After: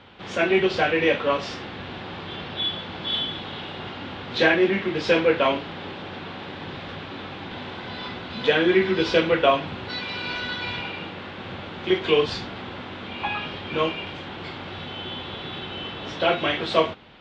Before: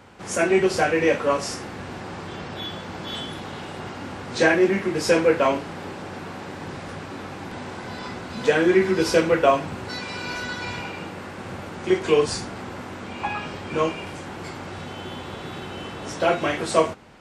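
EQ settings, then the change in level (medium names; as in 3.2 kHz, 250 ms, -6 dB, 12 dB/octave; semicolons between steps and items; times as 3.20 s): four-pole ladder low-pass 3.9 kHz, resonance 60%; +9.0 dB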